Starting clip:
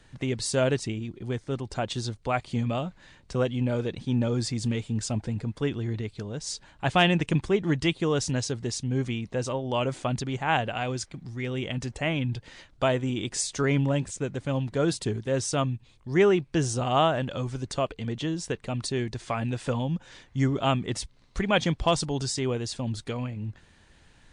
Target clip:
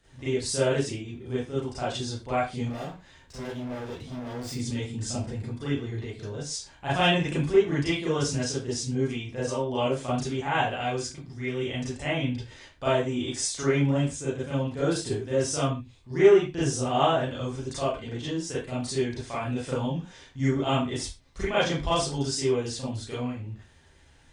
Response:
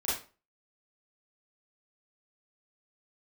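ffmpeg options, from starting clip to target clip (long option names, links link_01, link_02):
-filter_complex "[0:a]highshelf=frequency=8600:gain=5.5,asettb=1/sr,asplit=3[link_01][link_02][link_03];[link_01]atrim=end=2.654[link_04];[link_02]atrim=start=2.65:end=4.52,asetpts=PTS-STARTPTS,afade=type=in:duration=0.004:curve=qsin,afade=type=out:start_time=1.866:duration=0.004:curve=qsin,volume=33.5dB,asoftclip=hard,volume=-33.5dB[link_05];[link_03]atrim=start=4.516[link_06];[link_04][link_05]acrossfade=duration=0.004:curve1=hsin:curve2=qsin[link_07];[link_07][link_06]acrossfade=duration=0.004:curve1=qsin:curve2=hsin[link_08];[1:a]atrim=start_sample=2205,afade=type=out:start_time=0.23:duration=0.01,atrim=end_sample=10584[link_09];[link_08][link_09]afir=irnorm=-1:irlink=0,volume=-7dB"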